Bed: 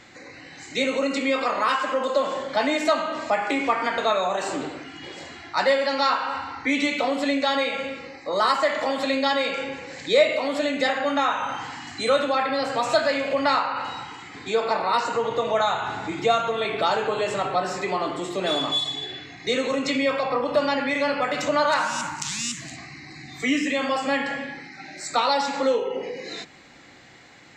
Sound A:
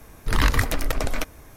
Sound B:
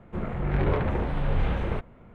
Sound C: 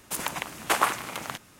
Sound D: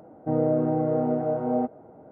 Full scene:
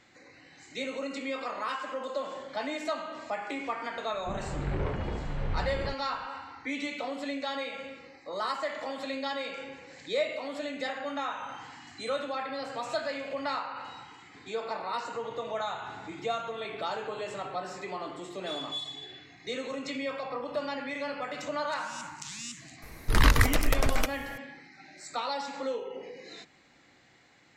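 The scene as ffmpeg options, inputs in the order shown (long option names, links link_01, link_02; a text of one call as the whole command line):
ffmpeg -i bed.wav -i cue0.wav -i cue1.wav -filter_complex "[0:a]volume=-11.5dB[link_01];[2:a]atrim=end=2.14,asetpts=PTS-STARTPTS,volume=-7dB,afade=type=in:duration=0.004:curve=hsin,afade=type=out:start_time=2.136:duration=0.004:curve=hsin,adelay=182133S[link_02];[1:a]atrim=end=1.56,asetpts=PTS-STARTPTS,volume=-1dB,afade=type=in:duration=0.004:curve=hsin,afade=type=out:start_time=1.556:duration=0.004:curve=hsin,adelay=22820[link_03];[link_01][link_02][link_03]amix=inputs=3:normalize=0" out.wav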